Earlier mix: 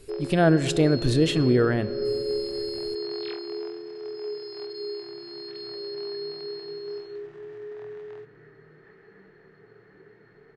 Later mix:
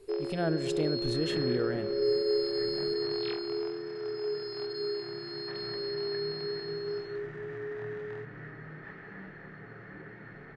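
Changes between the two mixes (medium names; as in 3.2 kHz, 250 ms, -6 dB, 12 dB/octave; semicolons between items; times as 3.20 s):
speech -11.5 dB; second sound +10.5 dB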